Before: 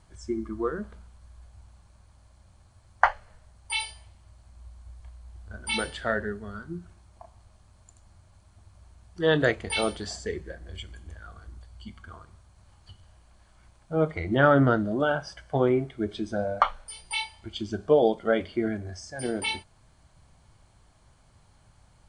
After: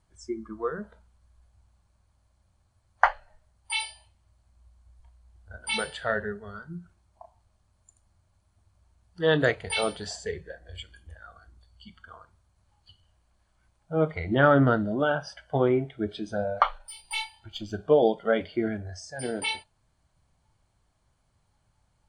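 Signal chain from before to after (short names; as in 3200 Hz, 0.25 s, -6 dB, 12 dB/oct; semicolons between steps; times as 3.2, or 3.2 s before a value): 16.78–17.73 half-wave gain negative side -3 dB; spectral noise reduction 11 dB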